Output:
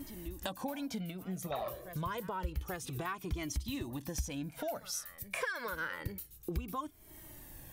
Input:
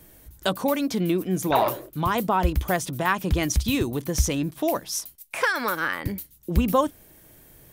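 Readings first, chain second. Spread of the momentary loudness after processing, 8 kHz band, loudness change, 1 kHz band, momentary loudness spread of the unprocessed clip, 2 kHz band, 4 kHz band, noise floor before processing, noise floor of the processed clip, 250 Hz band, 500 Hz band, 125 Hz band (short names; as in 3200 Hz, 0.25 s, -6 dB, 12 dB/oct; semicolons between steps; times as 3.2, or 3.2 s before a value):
6 LU, -12.0 dB, -14.5 dB, -16.0 dB, 7 LU, -13.0 dB, -13.0 dB, -53 dBFS, -56 dBFS, -15.0 dB, -15.5 dB, -13.5 dB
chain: reverse echo 0.84 s -22 dB; compressor 6:1, threshold -36 dBFS, peak gain reduction 20.5 dB; cascading flanger falling 0.28 Hz; gain +4 dB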